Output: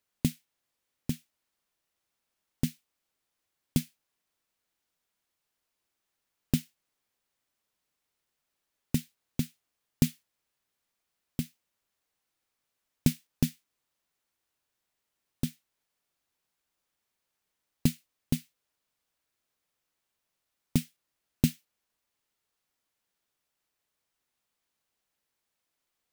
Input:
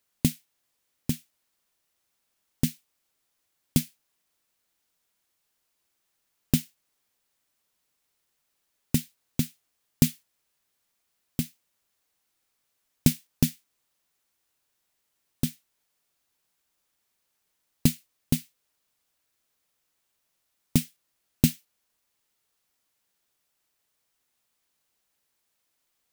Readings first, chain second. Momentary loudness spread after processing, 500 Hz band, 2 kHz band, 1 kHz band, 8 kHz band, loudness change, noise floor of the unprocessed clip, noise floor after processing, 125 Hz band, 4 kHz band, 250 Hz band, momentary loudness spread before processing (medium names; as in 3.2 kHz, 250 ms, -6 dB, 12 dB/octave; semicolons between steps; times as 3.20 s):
9 LU, -3.5 dB, -4.5 dB, -3.5 dB, -7.5 dB, -4.5 dB, -77 dBFS, -84 dBFS, -3.5 dB, -5.5 dB, -3.5 dB, 11 LU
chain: treble shelf 4.8 kHz -5 dB; trim -3.5 dB